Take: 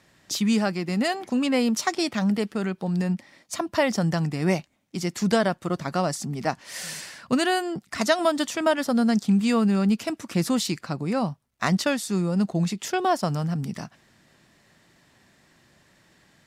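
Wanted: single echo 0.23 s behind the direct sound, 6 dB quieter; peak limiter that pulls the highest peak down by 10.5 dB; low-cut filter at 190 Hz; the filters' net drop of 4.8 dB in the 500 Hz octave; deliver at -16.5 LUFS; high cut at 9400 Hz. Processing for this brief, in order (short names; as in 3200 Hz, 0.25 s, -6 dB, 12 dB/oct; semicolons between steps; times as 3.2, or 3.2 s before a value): HPF 190 Hz; LPF 9400 Hz; bell 500 Hz -6.5 dB; limiter -18.5 dBFS; echo 0.23 s -6 dB; gain +12 dB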